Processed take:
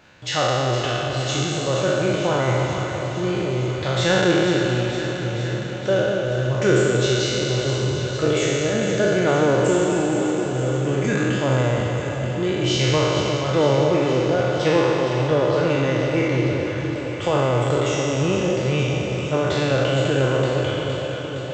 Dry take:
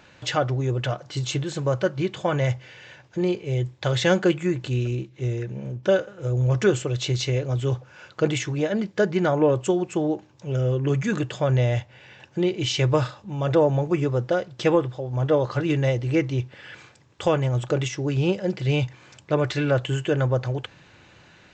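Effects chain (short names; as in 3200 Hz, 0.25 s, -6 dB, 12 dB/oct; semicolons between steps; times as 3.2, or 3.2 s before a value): spectral trails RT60 2.76 s; echo with dull and thin repeats by turns 0.232 s, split 910 Hz, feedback 85%, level -7 dB; gain -2.5 dB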